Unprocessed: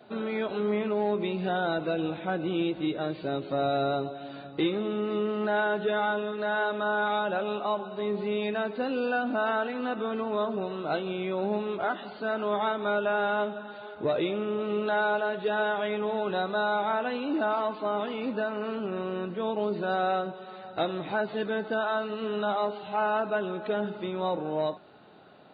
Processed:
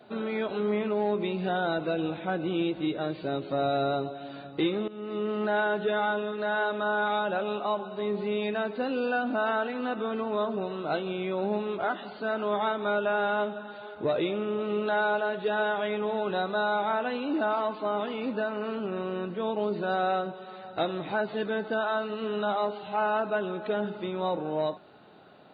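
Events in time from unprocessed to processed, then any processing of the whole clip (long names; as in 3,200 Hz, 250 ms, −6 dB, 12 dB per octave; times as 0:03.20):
0:04.88–0:05.33: fade in, from −16.5 dB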